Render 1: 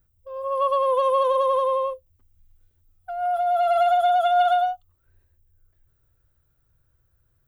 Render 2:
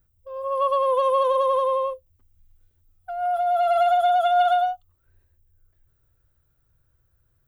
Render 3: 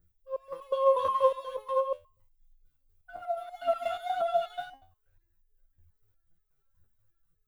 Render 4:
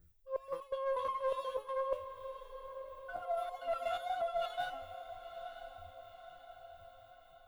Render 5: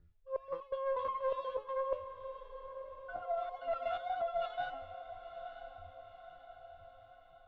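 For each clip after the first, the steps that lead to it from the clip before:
nothing audible
phaser 1.9 Hz, delay 2.6 ms, feedback 74%; stepped resonator 8.3 Hz 84–430 Hz
one diode to ground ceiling -19 dBFS; reverse; compressor 6:1, threshold -38 dBFS, peak gain reduction 17.5 dB; reverse; diffused feedback echo 0.955 s, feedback 54%, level -11 dB; gain +4 dB
air absorption 250 m; gain +1 dB

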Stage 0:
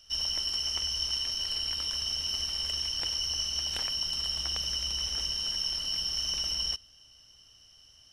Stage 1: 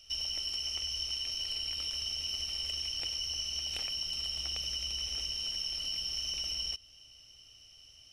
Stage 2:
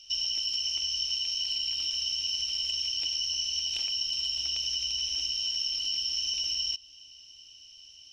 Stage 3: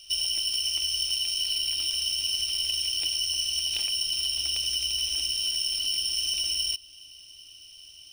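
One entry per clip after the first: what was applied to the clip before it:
thirty-one-band EQ 200 Hz -6 dB, 1000 Hz -9 dB, 1600 Hz -8 dB, 2500 Hz +8 dB; compressor 2.5:1, threshold -35 dBFS, peak gain reduction 6 dB
band shelf 4300 Hz +12 dB; small resonant body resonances 300/910/1600 Hz, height 9 dB, ringing for 85 ms; gain -6.5 dB
decimation joined by straight lines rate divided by 3×; gain +5 dB

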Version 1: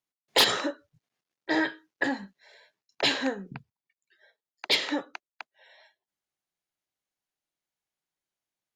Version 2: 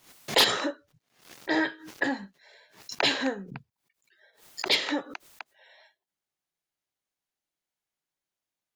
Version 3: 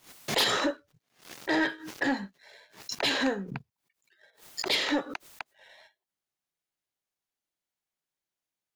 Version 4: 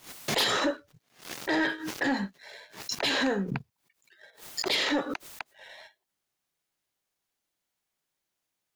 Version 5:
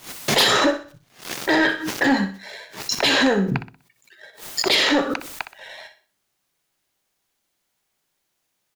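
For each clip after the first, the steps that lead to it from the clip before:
backwards sustainer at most 120 dB/s
limiter -19 dBFS, peak gain reduction 9.5 dB; sample leveller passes 1
limiter -26.5 dBFS, peak gain reduction 7.5 dB; gain +6.5 dB
feedback echo 62 ms, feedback 36%, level -11.5 dB; on a send at -21 dB: reverb RT60 0.40 s, pre-delay 5 ms; on the sum: gain +9 dB

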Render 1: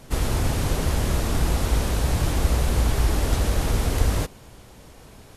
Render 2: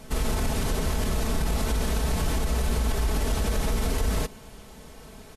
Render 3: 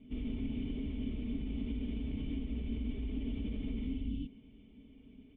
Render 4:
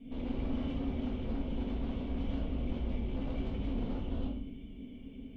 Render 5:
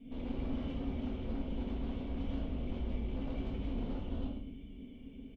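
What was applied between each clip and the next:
comb 4.6 ms, depth 53%; limiter -17 dBFS, peak gain reduction 10 dB
vocal tract filter i; notch comb 170 Hz; spectral repair 3.85–4.25, 350–2600 Hz both
tube stage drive 44 dB, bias 0.3; reverb RT60 0.65 s, pre-delay 4 ms, DRR -5.5 dB; gain +2 dB
echo 0.107 s -13 dB; gain -2.5 dB

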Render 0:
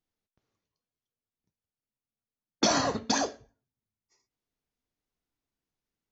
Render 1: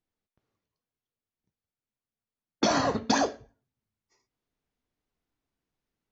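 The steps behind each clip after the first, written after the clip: LPF 3100 Hz 6 dB/oct; vocal rider 0.5 s; gain +3.5 dB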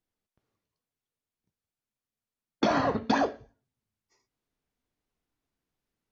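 treble ducked by the level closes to 2900 Hz, closed at -24.5 dBFS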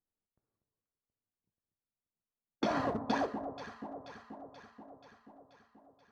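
Wiener smoothing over 15 samples; echo with dull and thin repeats by turns 0.241 s, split 980 Hz, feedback 78%, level -9 dB; gain -7 dB

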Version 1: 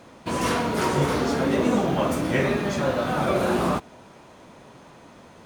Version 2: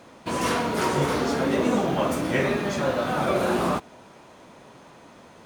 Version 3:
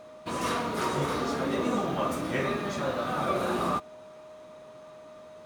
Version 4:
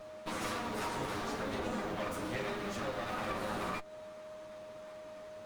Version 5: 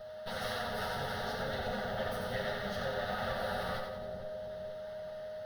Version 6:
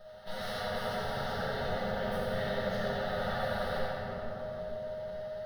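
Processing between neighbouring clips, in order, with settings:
low shelf 160 Hz -5 dB
small resonant body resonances 1200/3800 Hz, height 11 dB, ringing for 45 ms; whine 620 Hz -40 dBFS; gain -6 dB
minimum comb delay 9.6 ms; compressor 2.5:1, threshold -37 dBFS, peak gain reduction 8 dB
fixed phaser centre 1600 Hz, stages 8; split-band echo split 640 Hz, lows 0.454 s, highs 90 ms, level -5 dB; gain +3 dB
shoebox room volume 160 m³, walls hard, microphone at 0.93 m; gain -5.5 dB

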